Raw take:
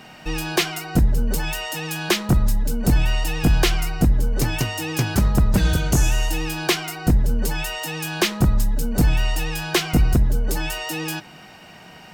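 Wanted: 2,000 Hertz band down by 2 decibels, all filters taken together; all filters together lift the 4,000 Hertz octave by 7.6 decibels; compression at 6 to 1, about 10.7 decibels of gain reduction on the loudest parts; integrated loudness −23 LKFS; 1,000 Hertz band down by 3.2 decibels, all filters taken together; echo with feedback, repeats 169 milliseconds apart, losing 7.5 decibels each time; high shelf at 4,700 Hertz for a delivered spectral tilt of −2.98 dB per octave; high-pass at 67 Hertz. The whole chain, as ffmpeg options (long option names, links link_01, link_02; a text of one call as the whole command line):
ffmpeg -i in.wav -af "highpass=67,equalizer=frequency=1000:width_type=o:gain=-3.5,equalizer=frequency=2000:width_type=o:gain=-7,equalizer=frequency=4000:width_type=o:gain=8.5,highshelf=frequency=4700:gain=8,acompressor=threshold=-24dB:ratio=6,aecho=1:1:169|338|507|676|845:0.422|0.177|0.0744|0.0312|0.0131,volume=3.5dB" out.wav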